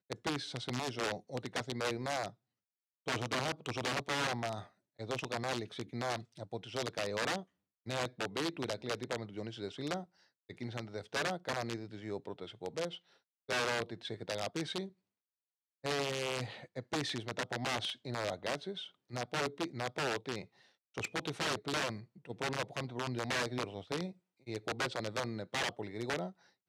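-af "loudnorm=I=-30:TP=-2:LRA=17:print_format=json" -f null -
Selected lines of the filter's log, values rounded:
"input_i" : "-38.2",
"input_tp" : "-24.0",
"input_lra" : "2.1",
"input_thresh" : "-48.4",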